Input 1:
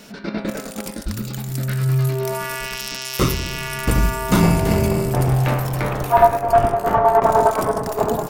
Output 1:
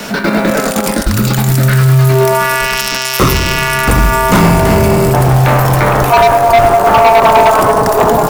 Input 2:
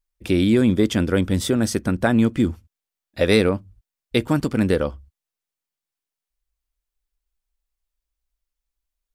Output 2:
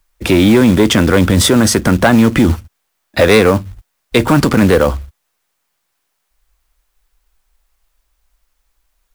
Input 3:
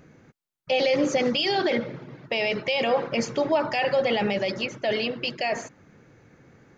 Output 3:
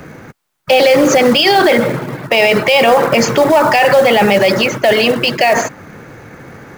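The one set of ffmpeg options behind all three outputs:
-filter_complex "[0:a]acrossover=split=120|630|1900[a][b][c][d];[c]acontrast=62[e];[a][b][e][d]amix=inputs=4:normalize=0,asoftclip=type=tanh:threshold=-11dB,acrusher=bits=5:mode=log:mix=0:aa=0.000001,alimiter=level_in=20dB:limit=-1dB:release=50:level=0:latency=1,volume=-2dB"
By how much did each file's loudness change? +10.0, +9.0, +14.0 LU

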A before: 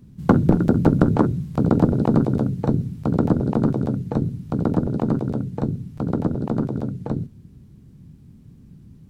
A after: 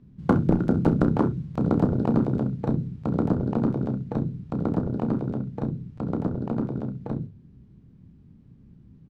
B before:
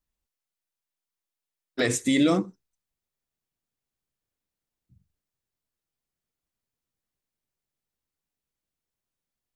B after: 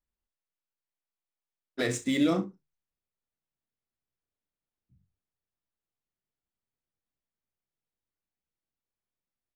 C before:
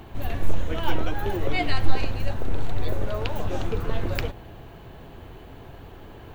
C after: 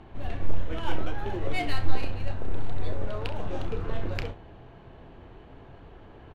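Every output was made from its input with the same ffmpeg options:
-af "adynamicsmooth=sensitivity=7.5:basefreq=3.6k,bandreject=f=50:t=h:w=6,bandreject=f=100:t=h:w=6,bandreject=f=150:t=h:w=6,aecho=1:1:31|65:0.335|0.158,volume=-5dB"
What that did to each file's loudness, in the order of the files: -4.5, -4.5, -4.5 LU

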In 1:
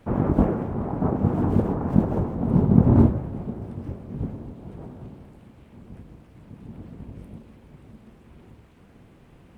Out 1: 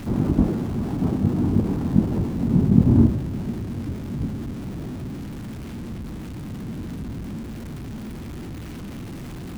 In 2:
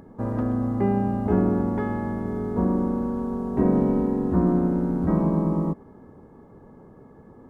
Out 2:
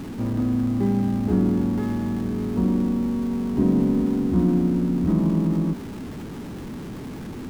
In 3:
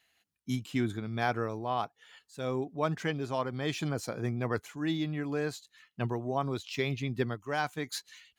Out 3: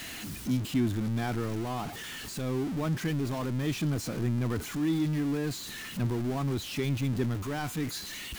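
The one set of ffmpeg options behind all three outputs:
-af "aeval=exprs='val(0)+0.5*0.0422*sgn(val(0))':c=same,lowshelf=f=390:t=q:w=1.5:g=6.5,volume=-7.5dB"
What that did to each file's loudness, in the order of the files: -1.5, +1.5, +2.0 LU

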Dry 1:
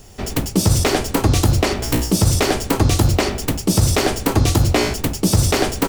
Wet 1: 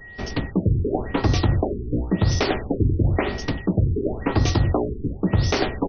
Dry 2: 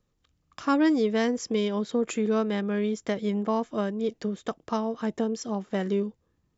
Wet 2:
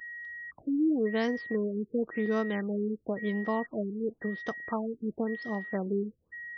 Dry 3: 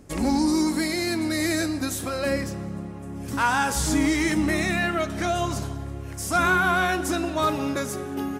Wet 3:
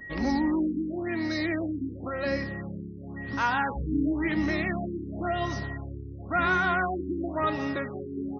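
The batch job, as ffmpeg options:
-af "aeval=exprs='val(0)+0.0178*sin(2*PI*1900*n/s)':c=same,afftfilt=real='re*lt(b*sr/1024,430*pow(6500/430,0.5+0.5*sin(2*PI*0.95*pts/sr)))':imag='im*lt(b*sr/1024,430*pow(6500/430,0.5+0.5*sin(2*PI*0.95*pts/sr)))':win_size=1024:overlap=0.75,volume=-4dB"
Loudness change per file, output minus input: -5.0, -4.5, -5.0 LU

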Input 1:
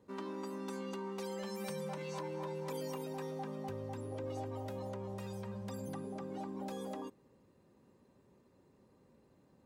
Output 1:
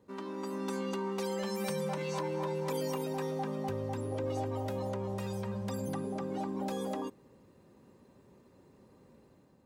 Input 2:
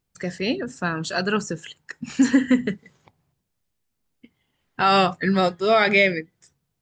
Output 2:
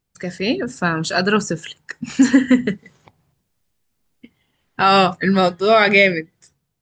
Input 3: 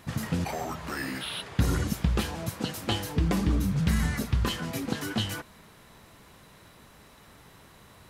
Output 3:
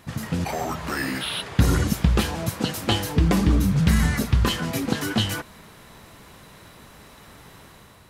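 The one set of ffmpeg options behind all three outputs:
-af "dynaudnorm=f=130:g=7:m=5.5dB,volume=1dB"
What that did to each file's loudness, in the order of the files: +6.5, +4.5, +6.5 LU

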